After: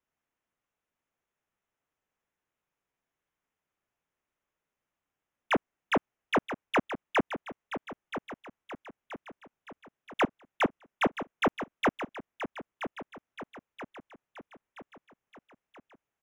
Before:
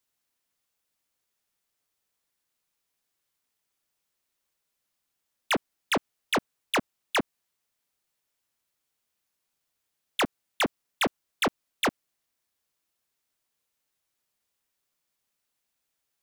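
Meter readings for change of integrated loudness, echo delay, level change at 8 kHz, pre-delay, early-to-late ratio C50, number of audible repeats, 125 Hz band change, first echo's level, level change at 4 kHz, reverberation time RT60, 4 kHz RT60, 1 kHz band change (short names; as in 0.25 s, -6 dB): -2.5 dB, 0.977 s, -14.0 dB, none, none, 5, +1.5 dB, -10.5 dB, -8.0 dB, none, none, +0.5 dB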